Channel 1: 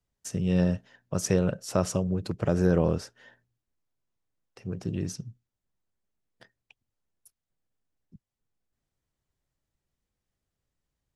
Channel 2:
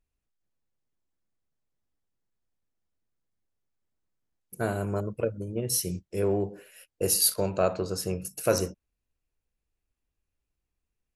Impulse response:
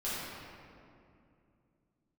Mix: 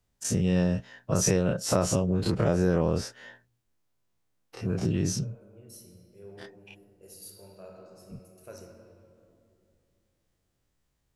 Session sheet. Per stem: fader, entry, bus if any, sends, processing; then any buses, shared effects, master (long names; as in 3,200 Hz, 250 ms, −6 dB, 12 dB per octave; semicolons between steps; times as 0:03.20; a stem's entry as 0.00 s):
+3.0 dB, 0.00 s, no send, every bin's largest magnitude spread in time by 60 ms
−19.0 dB, 0.00 s, send −11 dB, automatic ducking −12 dB, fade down 0.65 s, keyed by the first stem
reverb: on, RT60 2.5 s, pre-delay 5 ms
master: downward compressor 2.5 to 1, threshold −22 dBFS, peak gain reduction 7 dB